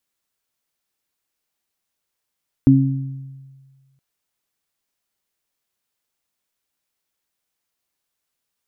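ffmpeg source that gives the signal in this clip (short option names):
-f lavfi -i "aevalsrc='0.282*pow(10,-3*t/1.62)*sin(2*PI*135*t)+0.447*pow(10,-3*t/0.8)*sin(2*PI*270*t)':d=1.32:s=44100"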